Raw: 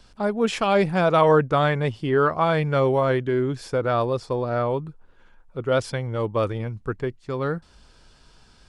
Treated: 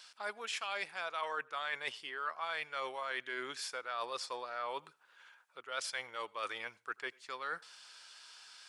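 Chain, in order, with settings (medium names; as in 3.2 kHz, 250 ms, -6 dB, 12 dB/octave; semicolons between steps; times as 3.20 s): high-pass 1.5 kHz 12 dB/octave; reverse; compression 6:1, threshold -41 dBFS, peak gain reduction 17.5 dB; reverse; reverberation RT60 0.25 s, pre-delay 77 ms, DRR 25 dB; trim +4.5 dB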